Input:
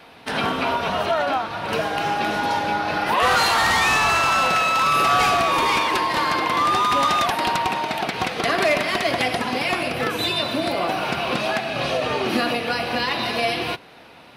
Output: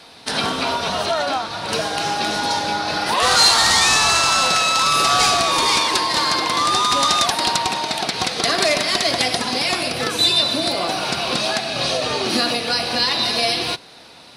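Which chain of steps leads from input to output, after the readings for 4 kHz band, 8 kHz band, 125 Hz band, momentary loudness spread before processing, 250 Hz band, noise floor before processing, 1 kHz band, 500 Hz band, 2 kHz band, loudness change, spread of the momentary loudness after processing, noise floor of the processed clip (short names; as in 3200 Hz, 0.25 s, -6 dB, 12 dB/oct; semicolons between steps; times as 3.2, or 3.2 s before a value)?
+8.5 dB, +11.5 dB, 0.0 dB, 7 LU, 0.0 dB, -46 dBFS, 0.0 dB, 0.0 dB, 0.0 dB, +3.0 dB, 8 LU, -43 dBFS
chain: band shelf 6100 Hz +12 dB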